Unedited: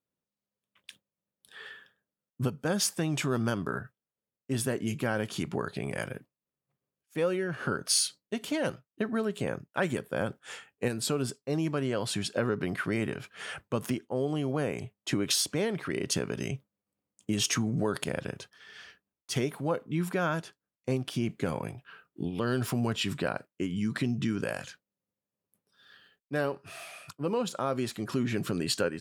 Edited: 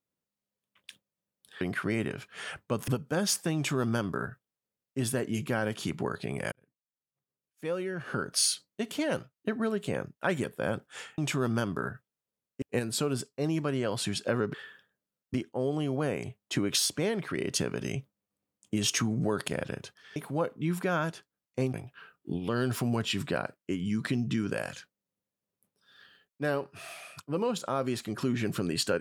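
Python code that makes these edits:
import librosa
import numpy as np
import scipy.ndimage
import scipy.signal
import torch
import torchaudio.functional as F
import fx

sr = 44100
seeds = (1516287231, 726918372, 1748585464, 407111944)

y = fx.edit(x, sr, fx.swap(start_s=1.61, length_s=0.8, other_s=12.63, other_length_s=1.27),
    fx.duplicate(start_s=3.08, length_s=1.44, to_s=10.71),
    fx.fade_in_span(start_s=6.05, length_s=2.0),
    fx.cut(start_s=18.72, length_s=0.74),
    fx.cut(start_s=21.04, length_s=0.61), tone=tone)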